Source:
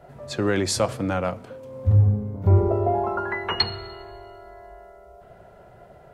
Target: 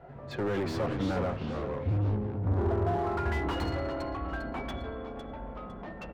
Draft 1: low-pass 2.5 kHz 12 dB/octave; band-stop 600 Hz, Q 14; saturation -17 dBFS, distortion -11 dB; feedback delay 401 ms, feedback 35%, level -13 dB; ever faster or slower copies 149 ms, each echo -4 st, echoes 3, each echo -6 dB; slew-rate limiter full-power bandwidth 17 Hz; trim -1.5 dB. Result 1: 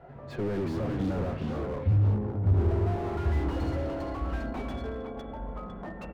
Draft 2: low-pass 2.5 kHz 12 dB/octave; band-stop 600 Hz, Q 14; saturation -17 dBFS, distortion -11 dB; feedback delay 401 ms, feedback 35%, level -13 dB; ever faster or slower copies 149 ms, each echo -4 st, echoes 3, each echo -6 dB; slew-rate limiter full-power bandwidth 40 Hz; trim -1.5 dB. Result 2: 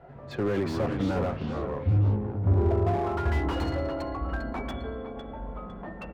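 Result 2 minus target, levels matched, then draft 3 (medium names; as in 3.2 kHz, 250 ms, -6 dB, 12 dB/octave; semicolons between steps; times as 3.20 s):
saturation: distortion -6 dB
low-pass 2.5 kHz 12 dB/octave; band-stop 600 Hz, Q 14; saturation -24.5 dBFS, distortion -5 dB; feedback delay 401 ms, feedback 35%, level -13 dB; ever faster or slower copies 149 ms, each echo -4 st, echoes 3, each echo -6 dB; slew-rate limiter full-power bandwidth 40 Hz; trim -1.5 dB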